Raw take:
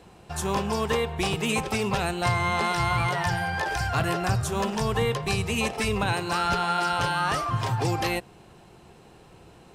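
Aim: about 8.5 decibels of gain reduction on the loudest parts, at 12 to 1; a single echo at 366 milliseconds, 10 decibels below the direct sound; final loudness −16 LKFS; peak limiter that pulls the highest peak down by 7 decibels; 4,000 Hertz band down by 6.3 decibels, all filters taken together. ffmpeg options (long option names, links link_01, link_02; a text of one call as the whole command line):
ffmpeg -i in.wav -af "equalizer=frequency=4000:width_type=o:gain=-9,acompressor=threshold=-29dB:ratio=12,alimiter=level_in=2.5dB:limit=-24dB:level=0:latency=1,volume=-2.5dB,aecho=1:1:366:0.316,volume=19.5dB" out.wav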